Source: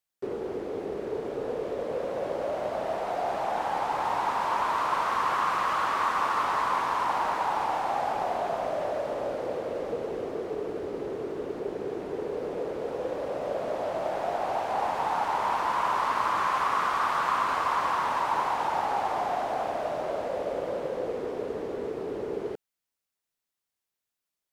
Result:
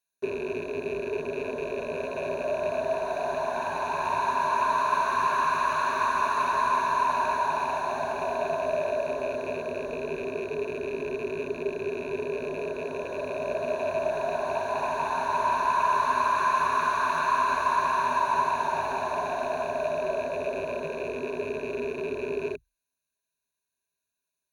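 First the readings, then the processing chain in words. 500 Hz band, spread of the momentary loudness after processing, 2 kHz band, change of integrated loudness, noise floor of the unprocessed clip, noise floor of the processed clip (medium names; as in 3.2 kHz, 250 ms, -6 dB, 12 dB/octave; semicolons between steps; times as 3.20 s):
+2.0 dB, 8 LU, +3.0 dB, +1.5 dB, under -85 dBFS, under -85 dBFS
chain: rattle on loud lows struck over -42 dBFS, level -31 dBFS; rippled EQ curve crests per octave 1.5, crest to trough 17 dB; trim -2.5 dB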